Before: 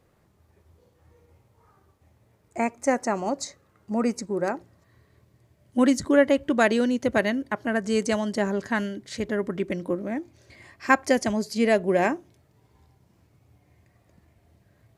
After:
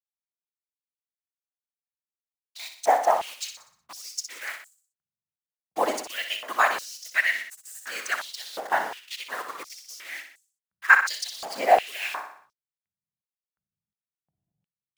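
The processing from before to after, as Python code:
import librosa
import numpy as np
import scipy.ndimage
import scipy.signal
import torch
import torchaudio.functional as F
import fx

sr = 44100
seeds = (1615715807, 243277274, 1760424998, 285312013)

p1 = fx.delta_hold(x, sr, step_db=-32.5)
p2 = fx.whisperise(p1, sr, seeds[0])
p3 = p2 + fx.echo_feedback(p2, sr, ms=61, feedback_pct=49, wet_db=-8.0, dry=0)
p4 = fx.filter_held_highpass(p3, sr, hz=2.8, low_hz=760.0, high_hz=7600.0)
y = p4 * 10.0 ** (-2.0 / 20.0)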